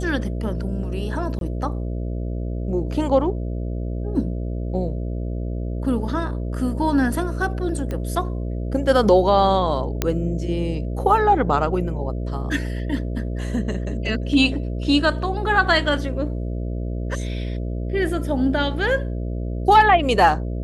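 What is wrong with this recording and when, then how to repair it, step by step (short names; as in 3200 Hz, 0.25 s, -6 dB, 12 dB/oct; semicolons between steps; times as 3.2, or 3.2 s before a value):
buzz 60 Hz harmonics 11 -26 dBFS
1.39–1.41 gap 22 ms
7.91 pop -16 dBFS
10.02 pop -5 dBFS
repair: de-click; de-hum 60 Hz, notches 11; interpolate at 1.39, 22 ms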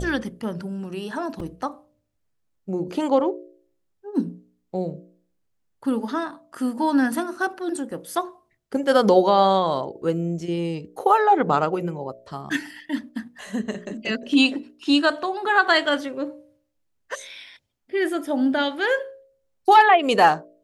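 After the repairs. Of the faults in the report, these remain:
none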